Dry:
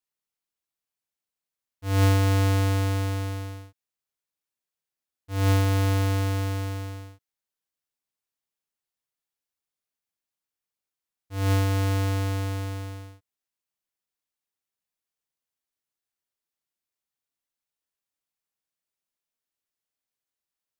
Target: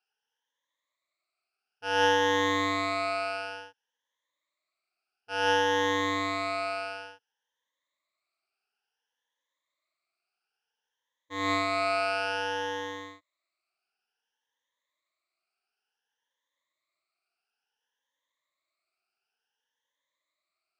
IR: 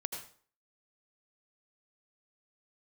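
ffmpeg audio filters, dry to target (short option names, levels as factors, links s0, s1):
-filter_complex "[0:a]afftfilt=real='re*pow(10,21/40*sin(2*PI*(1.1*log(max(b,1)*sr/1024/100)/log(2)-(0.57)*(pts-256)/sr)))':imag='im*pow(10,21/40*sin(2*PI*(1.1*log(max(b,1)*sr/1024/100)/log(2)-(0.57)*(pts-256)/sr)))':win_size=1024:overlap=0.75,asplit=2[s0][s1];[s1]acompressor=threshold=0.0282:ratio=6,volume=1[s2];[s0][s2]amix=inputs=2:normalize=0,highpass=570,lowpass=3800"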